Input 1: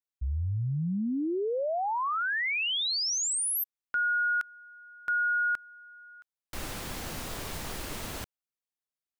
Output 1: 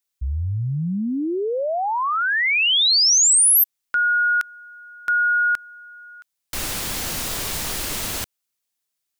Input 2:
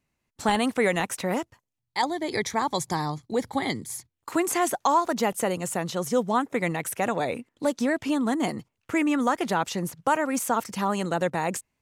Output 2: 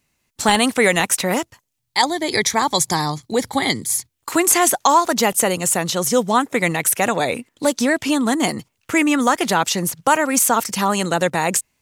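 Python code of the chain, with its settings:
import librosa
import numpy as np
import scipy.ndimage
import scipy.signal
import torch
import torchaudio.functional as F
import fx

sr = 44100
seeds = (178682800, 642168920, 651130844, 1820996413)

y = fx.high_shelf(x, sr, hz=2400.0, db=9.5)
y = y * librosa.db_to_amplitude(6.0)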